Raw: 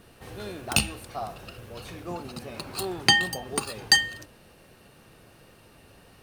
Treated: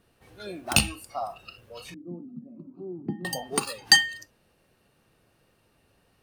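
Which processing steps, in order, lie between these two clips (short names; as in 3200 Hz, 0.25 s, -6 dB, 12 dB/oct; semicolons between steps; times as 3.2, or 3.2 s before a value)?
spectral noise reduction 14 dB; 1.94–3.25 Butterworth band-pass 230 Hz, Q 1.3; gain +2 dB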